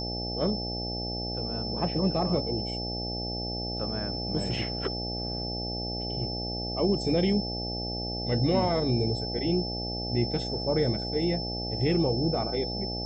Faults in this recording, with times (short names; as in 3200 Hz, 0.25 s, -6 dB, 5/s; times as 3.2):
buzz 60 Hz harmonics 14 -35 dBFS
tone 5300 Hz -34 dBFS